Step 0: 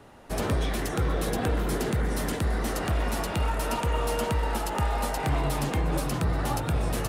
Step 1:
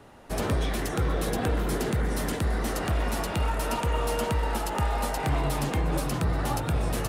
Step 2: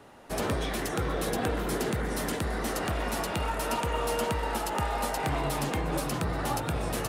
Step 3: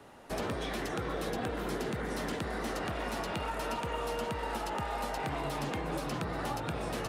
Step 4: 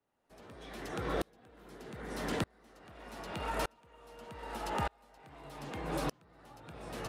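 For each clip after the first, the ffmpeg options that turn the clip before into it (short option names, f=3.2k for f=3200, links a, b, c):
-af anull
-af "lowshelf=f=130:g=-8.5"
-filter_complex "[0:a]acrossover=split=150|6000[a][b][c];[a]acompressor=threshold=-41dB:ratio=4[d];[b]acompressor=threshold=-31dB:ratio=4[e];[c]acompressor=threshold=-53dB:ratio=4[f];[d][e][f]amix=inputs=3:normalize=0,volume=-1.5dB"
-af "aeval=exprs='val(0)*pow(10,-36*if(lt(mod(-0.82*n/s,1),2*abs(-0.82)/1000),1-mod(-0.82*n/s,1)/(2*abs(-0.82)/1000),(mod(-0.82*n/s,1)-2*abs(-0.82)/1000)/(1-2*abs(-0.82)/1000))/20)':c=same,volume=4dB"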